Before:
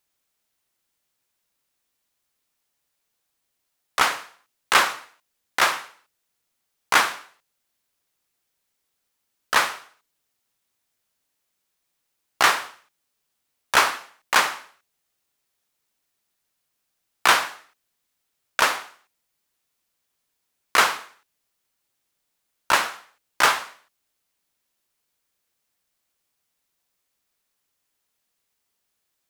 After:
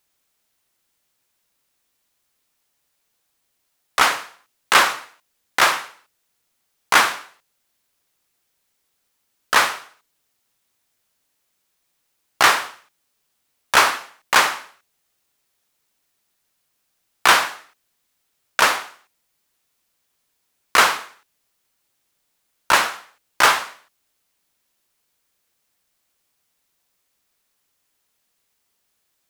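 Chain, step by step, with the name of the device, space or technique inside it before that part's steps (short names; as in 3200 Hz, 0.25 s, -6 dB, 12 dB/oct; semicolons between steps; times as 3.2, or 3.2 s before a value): parallel distortion (in parallel at -4 dB: hard clip -18 dBFS, distortion -7 dB); on the sum: gain +1 dB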